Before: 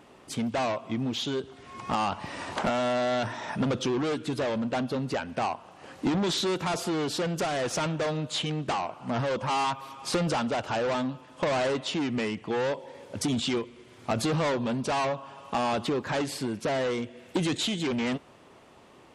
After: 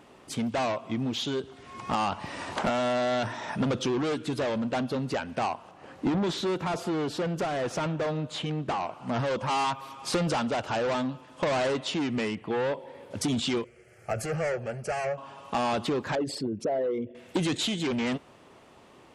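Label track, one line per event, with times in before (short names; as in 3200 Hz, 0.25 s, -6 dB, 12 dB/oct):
5.710000	8.810000	high shelf 2900 Hz -9 dB
12.350000	13.110000	bell 6300 Hz -10.5 dB 1.1 oct
13.640000	15.180000	fixed phaser centre 1000 Hz, stages 6
16.150000	17.150000	formant sharpening exponent 2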